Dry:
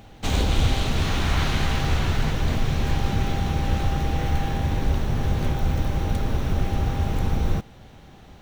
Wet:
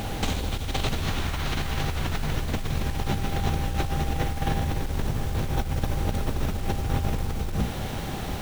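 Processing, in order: notches 60/120/180/240/300 Hz; negative-ratio compressor -32 dBFS, ratio -1; bit-crush 8-bit; gain +6 dB

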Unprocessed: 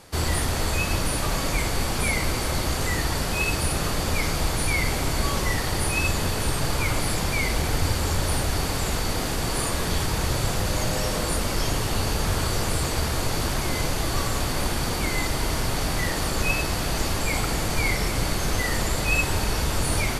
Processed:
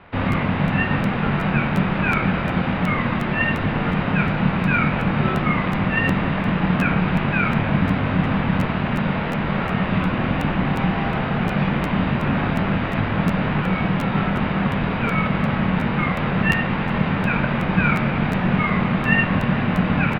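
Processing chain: bell 140 Hz -7 dB 2.8 oct; ring modulator 470 Hz; doubler 23 ms -8 dB; mistuned SSB -290 Hz 150–3000 Hz; crackling interface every 0.36 s, samples 512, repeat, from 0.31; gain +9 dB

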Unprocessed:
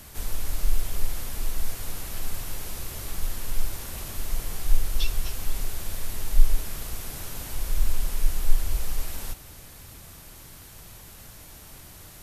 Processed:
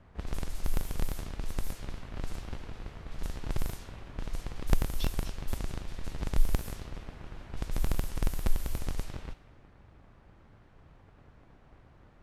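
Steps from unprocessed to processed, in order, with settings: cycle switcher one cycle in 3, inverted; low-pass opened by the level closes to 1400 Hz, open at -16 dBFS; gain -8.5 dB

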